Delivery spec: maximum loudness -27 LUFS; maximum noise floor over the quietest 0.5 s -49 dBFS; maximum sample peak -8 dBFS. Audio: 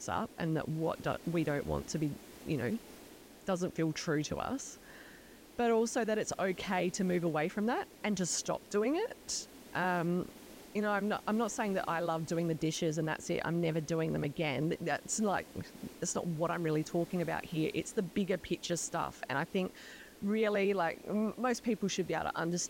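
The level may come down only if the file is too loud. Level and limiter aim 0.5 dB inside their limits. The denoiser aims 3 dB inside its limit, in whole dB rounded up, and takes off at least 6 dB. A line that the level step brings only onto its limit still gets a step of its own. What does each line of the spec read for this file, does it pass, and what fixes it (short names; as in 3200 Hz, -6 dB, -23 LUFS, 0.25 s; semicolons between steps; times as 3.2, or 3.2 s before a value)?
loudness -34.5 LUFS: OK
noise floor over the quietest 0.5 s -55 dBFS: OK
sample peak -21.5 dBFS: OK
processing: none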